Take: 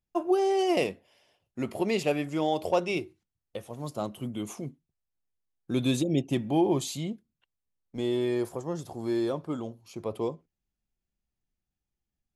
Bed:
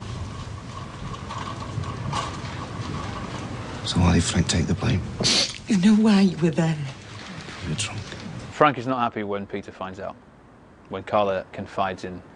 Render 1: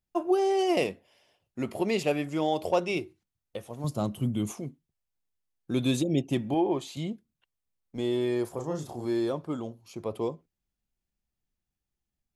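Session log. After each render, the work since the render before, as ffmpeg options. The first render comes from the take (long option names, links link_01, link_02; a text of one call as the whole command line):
ffmpeg -i in.wav -filter_complex "[0:a]asettb=1/sr,asplit=3[link_01][link_02][link_03];[link_01]atrim=end=3.844[link_04];[link_02]atrim=start=3.84:end=4.52,asetpts=PTS-STARTPTS,afade=type=in:duration=0.004:curve=qsin,afade=type=out:start_time=0.676:duration=0.004:curve=qsin,bass=frequency=250:gain=10,treble=frequency=4000:gain=3[link_05];[link_03]atrim=start=4.516[link_06];[link_04][link_05]acrossfade=duration=0.004:curve1=hsin:curve2=qsin[link_07];[link_07][link_06]acrossfade=duration=0.004:curve1=qsin:curve2=hsin,asettb=1/sr,asplit=3[link_08][link_09][link_10];[link_08]atrim=end=6.544[link_11];[link_09]atrim=start=6.54:end=6.97,asetpts=PTS-STARTPTS,afade=type=in:duration=0.004:curve=qsin,afade=type=out:start_time=0.426:duration=0.004:curve=qsin,bass=frequency=250:gain=-9,treble=frequency=4000:gain=-12[link_12];[link_10]atrim=start=6.966[link_13];[link_11][link_12]acrossfade=duration=0.004:curve1=hsin:curve2=qsin[link_14];[link_14][link_13]acrossfade=duration=0.004:curve1=qsin:curve2=hsin,asettb=1/sr,asplit=3[link_15][link_16][link_17];[link_15]atrim=end=8.544[link_18];[link_16]atrim=start=8.54:end=9.05,asetpts=PTS-STARTPTS,afade=type=in:duration=0.004:curve=qsin,afade=type=out:start_time=0.506:duration=0.004:curve=qsin,asplit=2[link_19][link_20];[link_20]adelay=33,volume=-4.5dB[link_21];[link_19][link_21]amix=inputs=2:normalize=0,atrim=end_sample=22491[link_22];[link_17]atrim=start=9.046[link_23];[link_18][link_22]acrossfade=duration=0.004:curve1=hsin:curve2=qsin[link_24];[link_24][link_23]acrossfade=duration=0.004:curve1=qsin:curve2=hsin" out.wav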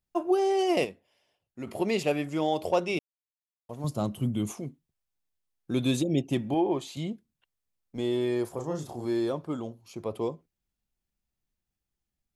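ffmpeg -i in.wav -filter_complex "[0:a]asplit=5[link_01][link_02][link_03][link_04][link_05];[link_01]atrim=end=0.852[link_06];[link_02]atrim=start=0.848:end=1.672,asetpts=PTS-STARTPTS,volume=-6.5dB[link_07];[link_03]atrim=start=1.668:end=2.99,asetpts=PTS-STARTPTS,afade=type=out:start_time=1.318:duration=0.004:curve=hsin[link_08];[link_04]atrim=start=2.99:end=3.69,asetpts=PTS-STARTPTS,volume=0[link_09];[link_05]atrim=start=3.69,asetpts=PTS-STARTPTS,afade=type=in:duration=0.004:curve=hsin[link_10];[link_06][link_07]acrossfade=duration=0.004:curve1=hsin:curve2=hsin[link_11];[link_08][link_09][link_10]concat=n=3:v=0:a=1[link_12];[link_11][link_12]acrossfade=duration=0.004:curve1=hsin:curve2=hsin" out.wav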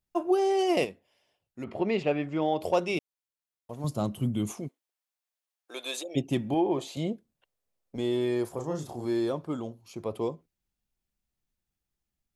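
ffmpeg -i in.wav -filter_complex "[0:a]asettb=1/sr,asplit=3[link_01][link_02][link_03];[link_01]atrim=end=1.644[link_04];[link_02]atrim=start=1.64:end=2.61,asetpts=PTS-STARTPTS,afade=type=in:duration=0.004:curve=qsin,afade=type=out:start_time=0.966:duration=0.004:curve=qsin,lowpass=2900[link_05];[link_03]atrim=start=2.606[link_06];[link_04][link_05]acrossfade=duration=0.004:curve1=hsin:curve2=qsin[link_07];[link_07][link_06]acrossfade=duration=0.004:curve1=qsin:curve2=hsin,asplit=3[link_08][link_09][link_10];[link_08]afade=type=out:start_time=4.67:duration=0.02[link_11];[link_09]highpass=frequency=520:width=0.5412,highpass=frequency=520:width=1.3066,afade=type=in:start_time=4.67:duration=0.02,afade=type=out:start_time=6.15:duration=0.02[link_12];[link_10]afade=type=in:start_time=6.15:duration=0.02[link_13];[link_11][link_12][link_13]amix=inputs=3:normalize=0,asettb=1/sr,asplit=3[link_14][link_15][link_16];[link_14]atrim=end=6.784[link_17];[link_15]atrim=start=6.78:end=7.96,asetpts=PTS-STARTPTS,afade=type=in:duration=0.004:curve=qsin,afade=type=out:start_time=1.176:duration=0.004:curve=qsin,equalizer=frequency=550:width=1.2:gain=11[link_18];[link_16]atrim=start=7.956[link_19];[link_17][link_18]acrossfade=duration=0.004:curve1=hsin:curve2=qsin[link_20];[link_20][link_19]acrossfade=duration=0.004:curve1=qsin:curve2=hsin" out.wav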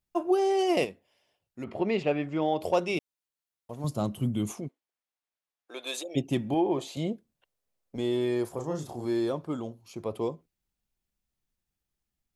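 ffmpeg -i in.wav -filter_complex "[0:a]asettb=1/sr,asplit=3[link_01][link_02][link_03];[link_01]atrim=end=4.604[link_04];[link_02]atrim=start=4.6:end=5.87,asetpts=PTS-STARTPTS,afade=type=in:duration=0.004:curve=qsin,afade=type=out:start_time=1.266:duration=0.004:curve=qsin,highshelf=frequency=5000:gain=-11[link_05];[link_03]atrim=start=5.866[link_06];[link_04][link_05]acrossfade=duration=0.004:curve1=hsin:curve2=qsin[link_07];[link_07][link_06]acrossfade=duration=0.004:curve1=qsin:curve2=hsin" out.wav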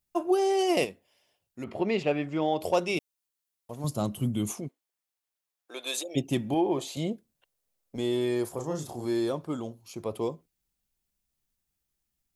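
ffmpeg -i in.wav -af "highshelf=frequency=5200:gain=7.5" out.wav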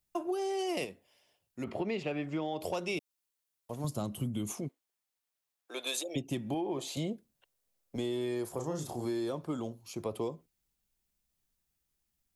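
ffmpeg -i in.wav -filter_complex "[0:a]acrossover=split=330|1000|4500[link_01][link_02][link_03][link_04];[link_02]alimiter=level_in=1dB:limit=-24dB:level=0:latency=1,volume=-1dB[link_05];[link_01][link_05][link_03][link_04]amix=inputs=4:normalize=0,acompressor=threshold=-31dB:ratio=6" out.wav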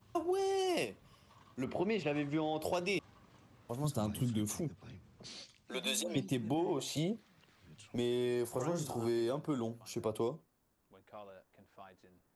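ffmpeg -i in.wav -i bed.wav -filter_complex "[1:a]volume=-30dB[link_01];[0:a][link_01]amix=inputs=2:normalize=0" out.wav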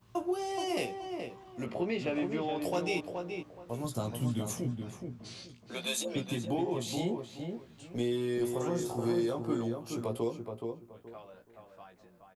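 ffmpeg -i in.wav -filter_complex "[0:a]asplit=2[link_01][link_02];[link_02]adelay=17,volume=-4dB[link_03];[link_01][link_03]amix=inputs=2:normalize=0,asplit=2[link_04][link_05];[link_05]adelay=424,lowpass=frequency=1900:poles=1,volume=-5dB,asplit=2[link_06][link_07];[link_07]adelay=424,lowpass=frequency=1900:poles=1,volume=0.25,asplit=2[link_08][link_09];[link_09]adelay=424,lowpass=frequency=1900:poles=1,volume=0.25[link_10];[link_04][link_06][link_08][link_10]amix=inputs=4:normalize=0" out.wav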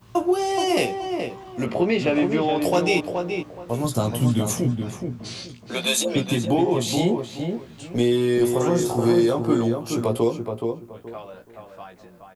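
ffmpeg -i in.wav -af "volume=12dB" out.wav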